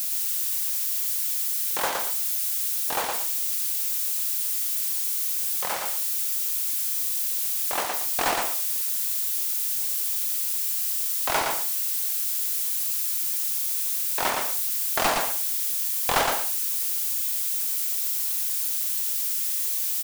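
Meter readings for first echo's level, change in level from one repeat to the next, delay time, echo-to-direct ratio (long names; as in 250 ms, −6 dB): −4.0 dB, −14.0 dB, 115 ms, −4.0 dB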